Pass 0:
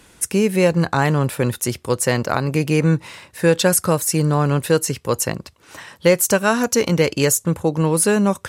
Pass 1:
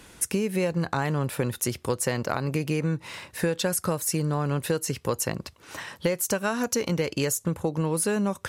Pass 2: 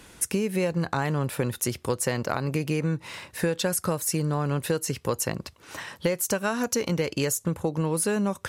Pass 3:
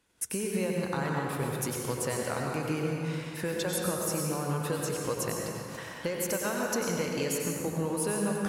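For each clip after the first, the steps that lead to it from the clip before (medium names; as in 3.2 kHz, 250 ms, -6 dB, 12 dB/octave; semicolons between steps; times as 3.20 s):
peaking EQ 8.2 kHz -2 dB 0.39 oct; compression 6:1, threshold -23 dBFS, peak gain reduction 13.5 dB
no audible change
gate -47 dBFS, range -16 dB; bass shelf 210 Hz -3.5 dB; reverberation RT60 2.6 s, pre-delay 82 ms, DRR -1.5 dB; trim -7 dB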